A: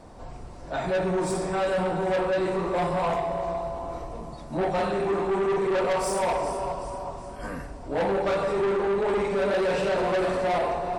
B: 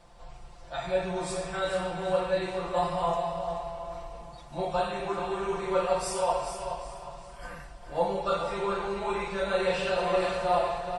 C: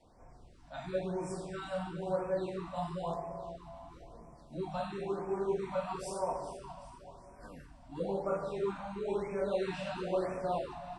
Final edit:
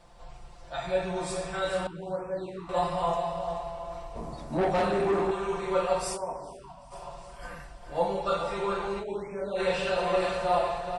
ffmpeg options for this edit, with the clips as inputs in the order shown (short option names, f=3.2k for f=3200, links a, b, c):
-filter_complex "[2:a]asplit=3[a][b][c];[1:a]asplit=5[d][e][f][g][h];[d]atrim=end=1.872[i];[a]atrim=start=1.868:end=2.692[j];[e]atrim=start=2.688:end=4.162[k];[0:a]atrim=start=4.158:end=5.312[l];[f]atrim=start=5.308:end=6.18[m];[b]atrim=start=6.14:end=6.94[n];[g]atrim=start=6.9:end=9.05[o];[c]atrim=start=8.99:end=9.61[p];[h]atrim=start=9.55[q];[i][j]acrossfade=d=0.004:c1=hsin:c2=hsin[r];[r][k]acrossfade=d=0.004:c1=hsin:c2=hsin[s];[s][l]acrossfade=d=0.004:c1=hsin:c2=hsin[t];[t][m]acrossfade=d=0.004:c1=hsin:c2=hsin[u];[u][n]acrossfade=d=0.04:c1=tri:c2=tri[v];[v][o]acrossfade=d=0.04:c1=tri:c2=tri[w];[w][p]acrossfade=d=0.06:c1=tri:c2=tri[x];[x][q]acrossfade=d=0.06:c1=tri:c2=tri"